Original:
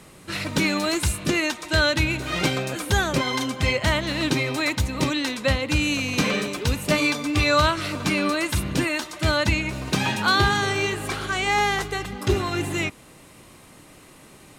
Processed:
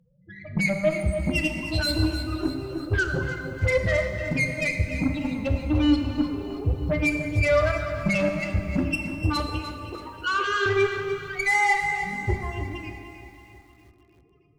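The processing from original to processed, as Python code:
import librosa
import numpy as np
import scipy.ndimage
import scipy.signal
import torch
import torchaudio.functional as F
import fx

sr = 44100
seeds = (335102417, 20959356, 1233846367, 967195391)

p1 = fx.spec_ripple(x, sr, per_octave=0.54, drift_hz=0.27, depth_db=11)
p2 = fx.level_steps(p1, sr, step_db=11)
p3 = fx.spec_topn(p2, sr, count=4)
p4 = fx.cheby_harmonics(p3, sr, harmonics=(2, 4, 6, 7), levels_db=(-13, -19, -20, -24), full_scale_db=-17.0)
p5 = fx.cabinet(p4, sr, low_hz=370.0, low_slope=24, high_hz=6600.0, hz=(480.0, 680.0, 1700.0, 3000.0, 5300.0), db=(7, -7, -7, 10, -7), at=(9.4, 10.66))
p6 = p5 + fx.echo_feedback(p5, sr, ms=314, feedback_pct=60, wet_db=-14.5, dry=0)
p7 = fx.rev_plate(p6, sr, seeds[0], rt60_s=2.0, hf_ratio=0.75, predelay_ms=0, drr_db=4.0)
p8 = fx.echo_crushed(p7, sr, ms=296, feedback_pct=35, bits=9, wet_db=-12.5)
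y = p8 * librosa.db_to_amplitude(2.5)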